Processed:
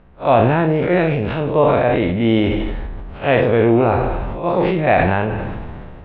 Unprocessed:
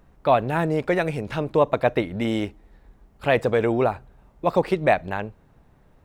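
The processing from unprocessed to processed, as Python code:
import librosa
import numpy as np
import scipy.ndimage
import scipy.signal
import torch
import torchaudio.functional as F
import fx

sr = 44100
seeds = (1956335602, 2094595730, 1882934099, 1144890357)

y = fx.spec_blur(x, sr, span_ms=91.0)
y = scipy.signal.sosfilt(scipy.signal.cheby1(3, 1.0, 3200.0, 'lowpass', fs=sr, output='sos'), y)
y = fx.rev_plate(y, sr, seeds[0], rt60_s=0.66, hf_ratio=1.0, predelay_ms=0, drr_db=10.5)
y = fx.sustainer(y, sr, db_per_s=23.0)
y = y * 10.0 ** (8.0 / 20.0)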